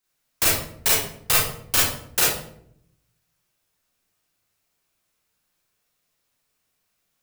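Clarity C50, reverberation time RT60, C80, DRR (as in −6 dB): −0.5 dB, 0.65 s, 5.0 dB, −7.0 dB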